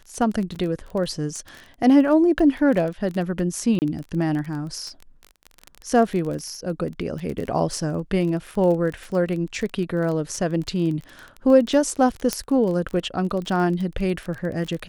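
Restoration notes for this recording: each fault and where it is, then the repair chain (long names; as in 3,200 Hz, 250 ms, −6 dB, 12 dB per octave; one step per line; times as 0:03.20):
surface crackle 23 per second −27 dBFS
0:00.55–0:00.56: drop-out 6.6 ms
0:03.79–0:03.82: drop-out 29 ms
0:12.33: click −6 dBFS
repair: click removal
repair the gap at 0:00.55, 6.6 ms
repair the gap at 0:03.79, 29 ms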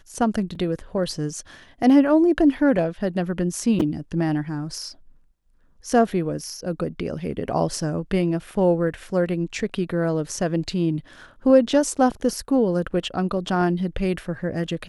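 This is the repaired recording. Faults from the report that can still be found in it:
none of them is left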